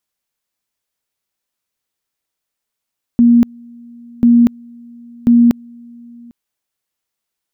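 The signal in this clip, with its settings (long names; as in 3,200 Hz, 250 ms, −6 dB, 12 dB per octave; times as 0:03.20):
tone at two levels in turn 237 Hz −5 dBFS, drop 29 dB, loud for 0.24 s, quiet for 0.80 s, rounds 3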